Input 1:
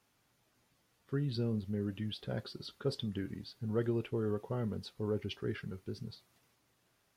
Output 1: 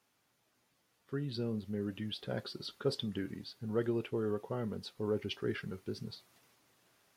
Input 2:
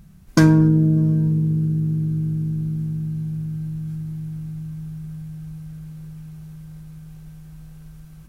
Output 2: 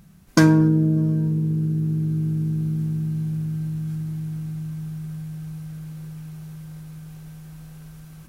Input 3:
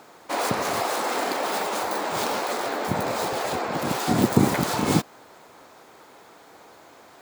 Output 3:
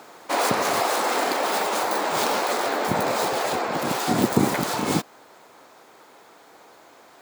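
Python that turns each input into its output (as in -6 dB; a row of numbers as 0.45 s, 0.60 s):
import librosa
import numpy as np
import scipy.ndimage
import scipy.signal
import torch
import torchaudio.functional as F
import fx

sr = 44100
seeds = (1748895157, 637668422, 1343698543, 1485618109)

y = fx.rider(x, sr, range_db=3, speed_s=2.0)
y = fx.low_shelf(y, sr, hz=110.0, db=-12.0)
y = y * librosa.db_to_amplitude(2.0)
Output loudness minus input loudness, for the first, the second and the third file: -0.5 LU, -2.0 LU, +1.5 LU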